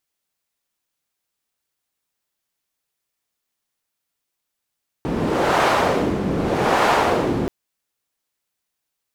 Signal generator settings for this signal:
wind from filtered noise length 2.43 s, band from 240 Hz, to 920 Hz, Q 1.1, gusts 2, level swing 5 dB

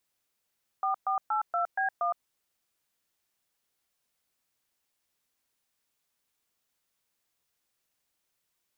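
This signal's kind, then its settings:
touch tones "4482B1", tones 114 ms, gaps 122 ms, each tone −28 dBFS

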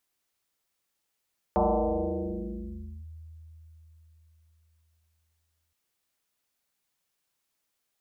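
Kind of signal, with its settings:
two-operator FM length 4.17 s, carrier 80.1 Hz, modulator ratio 1.69, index 6.4, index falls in 1.50 s linear, decay 4.31 s, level −19.5 dB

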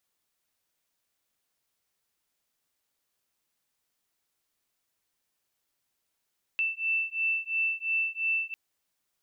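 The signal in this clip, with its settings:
two tones that beat 2,660 Hz, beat 2.9 Hz, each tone −29.5 dBFS 1.95 s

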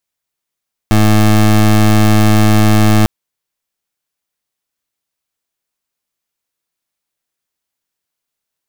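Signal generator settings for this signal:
pulse wave 107 Hz, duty 22% −8 dBFS 2.15 s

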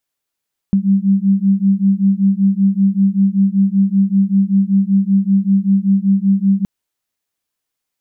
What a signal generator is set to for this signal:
two tones that beat 193 Hz, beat 5.2 Hz, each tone −13.5 dBFS 5.92 s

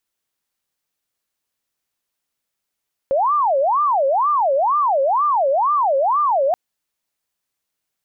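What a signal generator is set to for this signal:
siren wail 536–1,200 Hz 2.1 per second sine −14 dBFS 3.43 s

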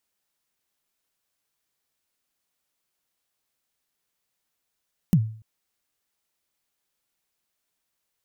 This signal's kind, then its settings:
synth kick length 0.29 s, from 200 Hz, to 110 Hz, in 64 ms, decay 0.47 s, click on, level −11 dB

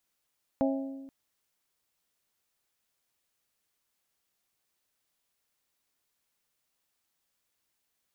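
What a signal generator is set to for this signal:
struck glass bell, length 0.48 s, lowest mode 271 Hz, modes 4, decay 1.38 s, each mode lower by 3 dB, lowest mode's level −24 dB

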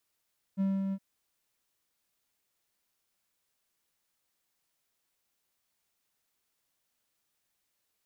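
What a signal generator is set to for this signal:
note with an ADSR envelope triangle 194 Hz, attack 36 ms, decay 225 ms, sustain −4.5 dB, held 0.36 s, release 55 ms −23 dBFS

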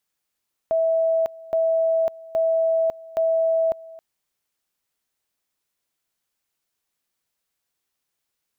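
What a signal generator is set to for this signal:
tone at two levels in turn 653 Hz −17 dBFS, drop 21 dB, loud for 0.55 s, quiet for 0.27 s, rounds 4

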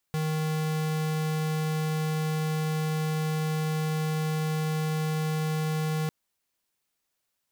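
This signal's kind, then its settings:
tone square 156 Hz −28 dBFS 5.95 s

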